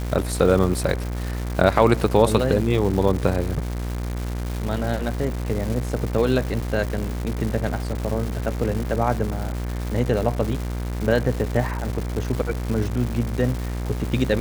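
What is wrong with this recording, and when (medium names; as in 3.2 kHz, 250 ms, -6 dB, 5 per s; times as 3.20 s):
buzz 60 Hz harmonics 40 -27 dBFS
crackle 390 per s -27 dBFS
6.61–6.62 s: dropout 5.3 ms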